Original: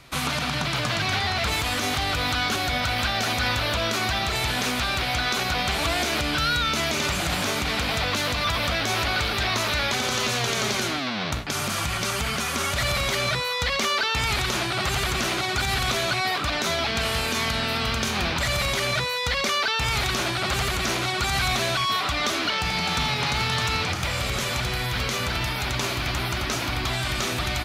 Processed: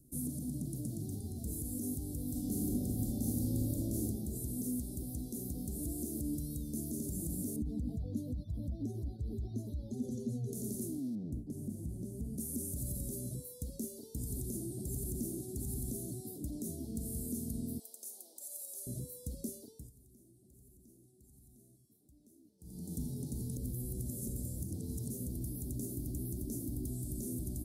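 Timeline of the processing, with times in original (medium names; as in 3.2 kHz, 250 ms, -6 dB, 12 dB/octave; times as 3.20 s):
2.28–4.01 s: reverb throw, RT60 1.5 s, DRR -4 dB
7.56–10.53 s: spectral contrast enhancement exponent 1.9
11.15–12.38 s: low-pass 1.4 kHz 6 dB/octave
17.79–18.87 s: high-pass 640 Hz 24 dB/octave
19.55–22.95 s: dip -23 dB, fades 0.37 s
23.56–25.10 s: reverse
whole clip: elliptic band-stop 270–9600 Hz, stop band 70 dB; tone controls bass -12 dB, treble -5 dB; trim +2 dB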